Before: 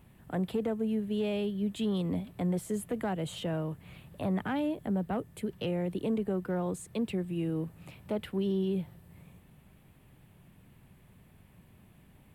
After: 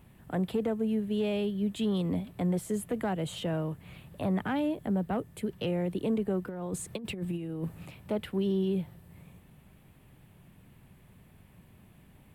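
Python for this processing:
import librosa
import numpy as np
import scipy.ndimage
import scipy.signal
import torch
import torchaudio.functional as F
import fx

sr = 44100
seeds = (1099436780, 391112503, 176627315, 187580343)

y = fx.over_compress(x, sr, threshold_db=-35.0, ratio=-0.5, at=(6.47, 7.86))
y = y * librosa.db_to_amplitude(1.5)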